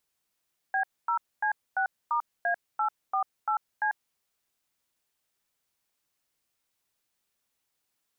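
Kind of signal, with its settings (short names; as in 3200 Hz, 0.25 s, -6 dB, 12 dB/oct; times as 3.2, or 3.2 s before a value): DTMF "B0C6*A848C", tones 94 ms, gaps 0.248 s, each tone -26.5 dBFS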